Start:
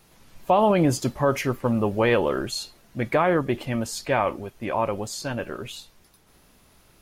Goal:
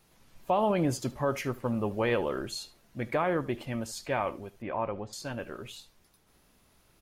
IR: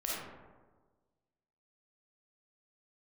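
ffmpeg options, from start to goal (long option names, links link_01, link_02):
-filter_complex "[0:a]asettb=1/sr,asplit=3[link_01][link_02][link_03];[link_01]atrim=end=4.624[link_04];[link_02]atrim=start=4.62:end=5.13,asetpts=PTS-STARTPTS,afade=type=in:duration=0.004:curve=qsin,afade=type=out:start_time=0.506:duration=0.004:curve=qsin,lowpass=2500[link_05];[link_03]atrim=start=5.126[link_06];[link_04][link_05]acrossfade=duration=0.004:curve1=hsin:curve2=qsin[link_07];[link_07][link_06]acrossfade=duration=0.004:curve1=qsin:curve2=hsin,aecho=1:1:75:0.106,volume=-7.5dB"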